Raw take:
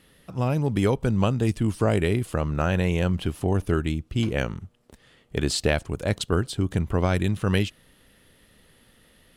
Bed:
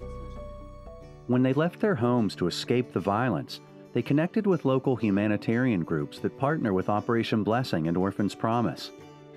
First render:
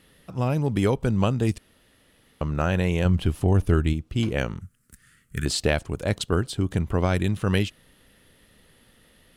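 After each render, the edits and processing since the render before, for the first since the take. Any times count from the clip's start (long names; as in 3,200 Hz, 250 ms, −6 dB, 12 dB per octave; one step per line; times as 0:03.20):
0:01.58–0:02.41: fill with room tone
0:03.05–0:03.93: low-shelf EQ 110 Hz +9.5 dB
0:04.61–0:05.46: drawn EQ curve 170 Hz 0 dB, 830 Hz −26 dB, 1,400 Hz +4 dB, 3,500 Hz −9 dB, 5,100 Hz −1 dB, 8,600 Hz +10 dB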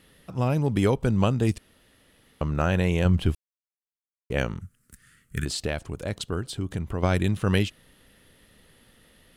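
0:03.35–0:04.30: silence
0:05.44–0:07.03: downward compressor 1.5 to 1, threshold −34 dBFS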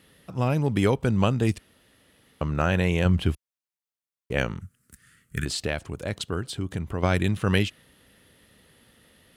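high-pass filter 56 Hz
dynamic equaliser 2,100 Hz, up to +3 dB, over −44 dBFS, Q 0.83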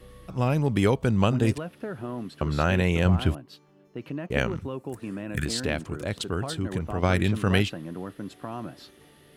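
mix in bed −10 dB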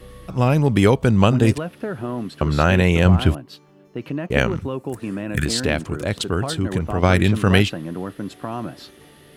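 level +7 dB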